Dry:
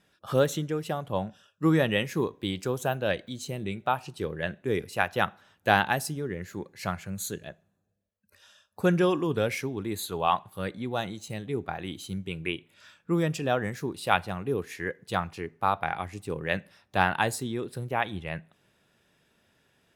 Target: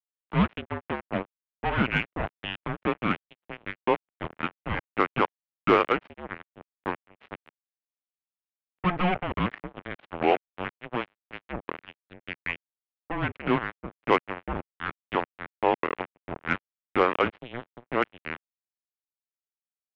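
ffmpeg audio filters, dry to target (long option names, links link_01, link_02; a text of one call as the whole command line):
ffmpeg -i in.wav -af "acrusher=bits=3:mix=0:aa=0.5,highpass=frequency=520:width_type=q:width=0.5412,highpass=frequency=520:width_type=q:width=1.307,lowpass=frequency=3200:width_type=q:width=0.5176,lowpass=frequency=3200:width_type=q:width=0.7071,lowpass=frequency=3200:width_type=q:width=1.932,afreqshift=-360,acontrast=78,volume=-3.5dB" out.wav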